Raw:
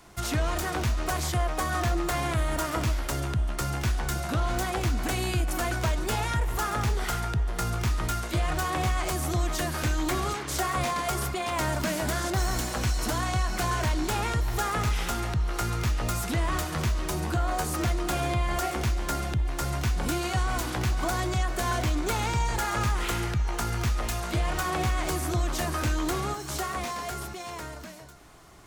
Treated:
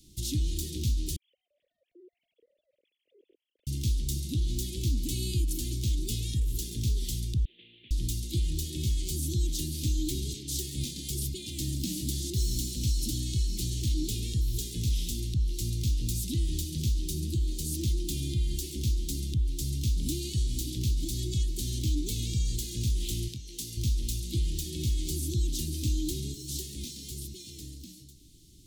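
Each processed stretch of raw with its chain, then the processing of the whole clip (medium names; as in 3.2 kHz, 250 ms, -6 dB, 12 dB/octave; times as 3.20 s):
1.16–3.67 s: formants replaced by sine waves + ladder band-pass 590 Hz, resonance 55% + compression 5:1, threshold -42 dBFS
7.45–7.91 s: CVSD coder 16 kbps + high-pass 840 Hz
23.28–23.77 s: high-pass 410 Hz 6 dB/octave + doubling 24 ms -11 dB
whole clip: elliptic band-stop 300–3500 Hz, stop band 60 dB; peaking EQ 230 Hz -2.5 dB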